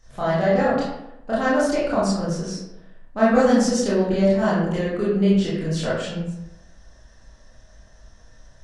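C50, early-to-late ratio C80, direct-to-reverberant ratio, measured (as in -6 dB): 0.0 dB, 3.0 dB, -9.5 dB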